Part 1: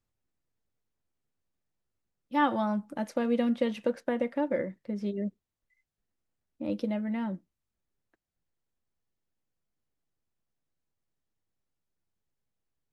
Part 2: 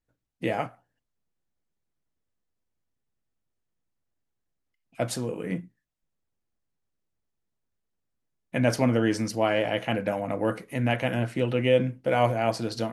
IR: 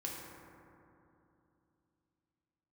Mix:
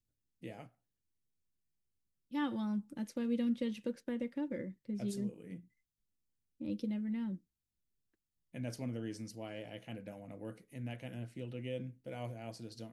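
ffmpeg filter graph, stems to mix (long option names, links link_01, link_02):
-filter_complex "[0:a]equalizer=frequency=660:width=2.8:gain=-10,volume=-3dB[link_01];[1:a]volume=-14.5dB[link_02];[link_01][link_02]amix=inputs=2:normalize=0,equalizer=frequency=1100:width=0.55:gain=-12"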